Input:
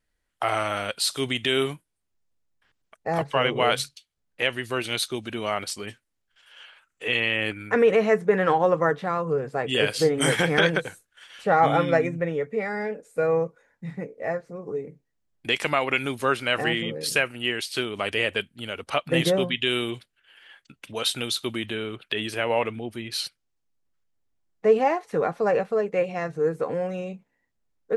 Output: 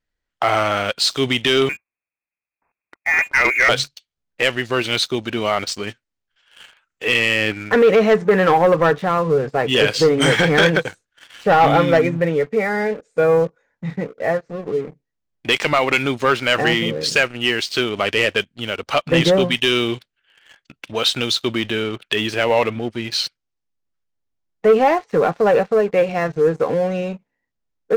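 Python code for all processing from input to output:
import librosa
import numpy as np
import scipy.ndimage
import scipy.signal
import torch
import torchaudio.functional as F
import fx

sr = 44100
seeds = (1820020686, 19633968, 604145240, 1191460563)

y = fx.chain(x, sr, fx.highpass(hz=64.0, slope=12),
    fx.freq_invert(carrier_hz=2600), at=(1.69, 3.69))
y = scipy.signal.sosfilt(scipy.signal.butter(4, 7000.0, 'lowpass', fs=sr, output='sos'), y)
y = fx.leveller(y, sr, passes=2)
y = y * librosa.db_to_amplitude(1.0)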